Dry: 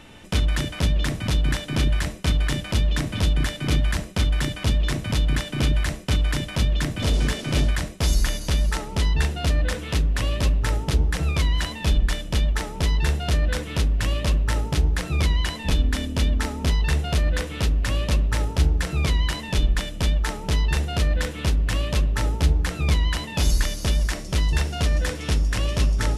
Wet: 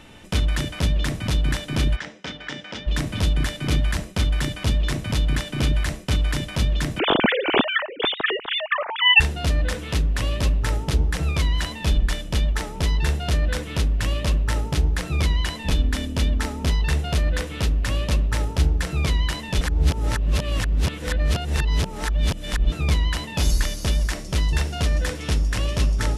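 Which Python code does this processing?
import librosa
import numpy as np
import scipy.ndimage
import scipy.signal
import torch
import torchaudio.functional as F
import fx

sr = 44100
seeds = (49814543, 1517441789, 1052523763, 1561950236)

y = fx.cabinet(x, sr, low_hz=320.0, low_slope=12, high_hz=5300.0, hz=(360.0, 650.0, 1100.0, 2600.0, 4300.0), db=(-7, -6, -7, -5, -9), at=(1.95, 2.86), fade=0.02)
y = fx.sine_speech(y, sr, at=(6.99, 9.2))
y = fx.edit(y, sr, fx.reverse_span(start_s=19.61, length_s=3.11), tone=tone)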